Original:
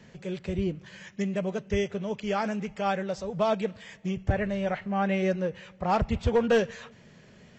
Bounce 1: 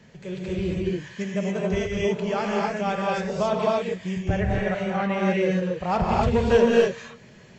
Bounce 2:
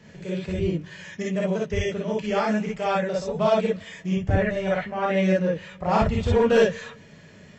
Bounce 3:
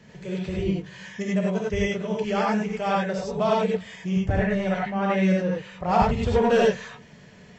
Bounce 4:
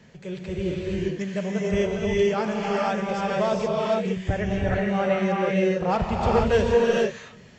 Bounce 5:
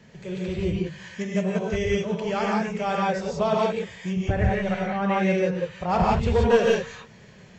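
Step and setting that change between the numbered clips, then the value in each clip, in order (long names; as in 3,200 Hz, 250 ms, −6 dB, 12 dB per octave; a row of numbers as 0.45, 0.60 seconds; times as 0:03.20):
reverb whose tail is shaped and stops, gate: 300, 80, 120, 490, 200 milliseconds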